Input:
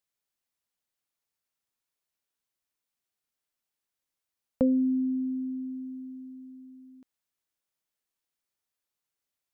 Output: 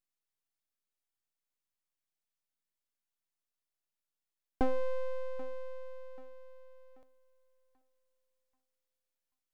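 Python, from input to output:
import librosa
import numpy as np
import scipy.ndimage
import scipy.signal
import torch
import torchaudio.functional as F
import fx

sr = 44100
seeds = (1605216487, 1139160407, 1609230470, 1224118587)

y = fx.echo_thinned(x, sr, ms=785, feedback_pct=50, hz=390.0, wet_db=-17)
y = np.abs(y)
y = y * librosa.db_to_amplitude(-3.5)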